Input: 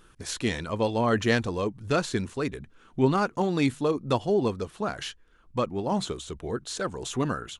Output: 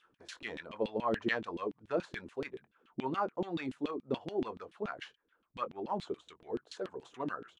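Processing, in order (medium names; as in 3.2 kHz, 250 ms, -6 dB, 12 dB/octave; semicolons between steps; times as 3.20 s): doubling 23 ms -12.5 dB; LFO band-pass saw down 7 Hz 230–3300 Hz; trim -2 dB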